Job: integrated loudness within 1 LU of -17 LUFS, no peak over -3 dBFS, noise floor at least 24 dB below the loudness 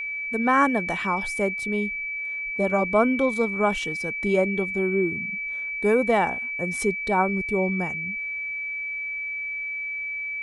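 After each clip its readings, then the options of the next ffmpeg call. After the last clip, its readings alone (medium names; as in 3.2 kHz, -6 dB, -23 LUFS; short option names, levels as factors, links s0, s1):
steady tone 2.3 kHz; tone level -28 dBFS; loudness -24.5 LUFS; peak level -7.0 dBFS; loudness target -17.0 LUFS
-> -af "bandreject=f=2300:w=30"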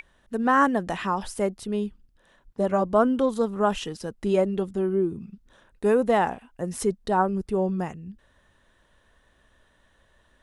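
steady tone not found; loudness -25.5 LUFS; peak level -8.0 dBFS; loudness target -17.0 LUFS
-> -af "volume=2.66,alimiter=limit=0.708:level=0:latency=1"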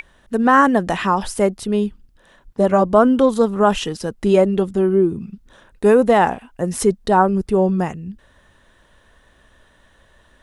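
loudness -17.5 LUFS; peak level -3.0 dBFS; noise floor -55 dBFS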